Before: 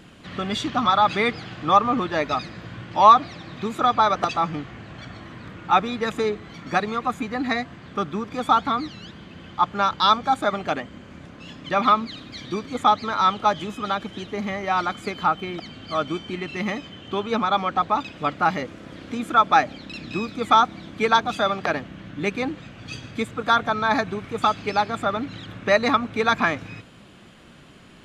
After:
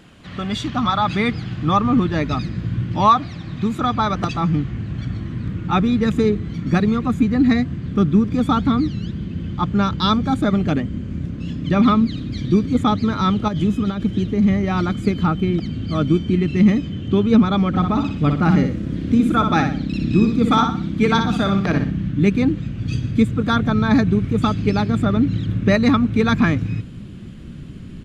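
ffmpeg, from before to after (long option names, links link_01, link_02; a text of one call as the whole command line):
ffmpeg -i in.wav -filter_complex "[0:a]asettb=1/sr,asplit=3[link_01][link_02][link_03];[link_01]atrim=end=13.484[link_04];[link_02]atrim=start=13.48:end=14.48,asetpts=PTS-STARTPTS,afade=type=in:duration=0.004:curve=qsin,afade=type=out:start_time=0.996:duration=0.004:curve=qsin,acompressor=threshold=-25dB:ratio=4:attack=3.2:release=140:knee=1:detection=peak[link_05];[link_03]atrim=start=14.476[link_06];[link_04][link_05]acrossfade=duration=0.004:curve1=hsin:curve2=qsin[link_07];[link_07][link_06]acrossfade=duration=0.004:curve1=qsin:curve2=hsin,asplit=3[link_08][link_09][link_10];[link_08]afade=type=out:start_time=17.73:duration=0.02[link_11];[link_09]aecho=1:1:61|122|183|244:0.501|0.175|0.0614|0.0215,afade=type=in:start_time=17.73:duration=0.02,afade=type=out:start_time=22.11:duration=0.02[link_12];[link_10]afade=type=in:start_time=22.11:duration=0.02[link_13];[link_11][link_12][link_13]amix=inputs=3:normalize=0,asubboost=boost=12:cutoff=230" out.wav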